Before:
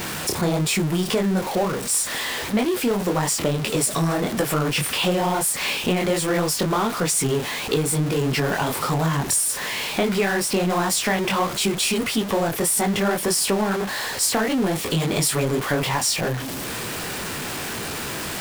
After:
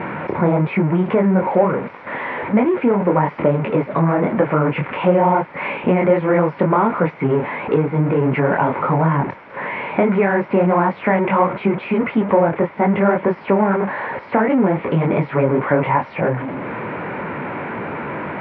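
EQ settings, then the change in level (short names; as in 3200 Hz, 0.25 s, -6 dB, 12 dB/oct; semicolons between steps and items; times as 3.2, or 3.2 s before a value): air absorption 220 m; speaker cabinet 160–2300 Hz, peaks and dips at 560 Hz +7 dB, 940 Hz +10 dB, 1400 Hz +5 dB, 2200 Hz +9 dB; low shelf 440 Hz +10.5 dB; -1.0 dB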